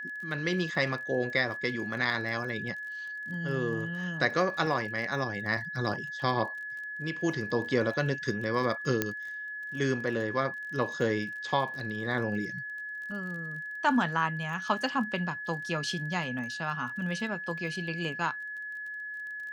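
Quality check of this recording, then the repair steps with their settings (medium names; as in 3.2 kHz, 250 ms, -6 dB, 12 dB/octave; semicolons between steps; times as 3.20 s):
crackle 28 per s -40 dBFS
whine 1.7 kHz -36 dBFS
9.02 s: pop -11 dBFS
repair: de-click; band-stop 1.7 kHz, Q 30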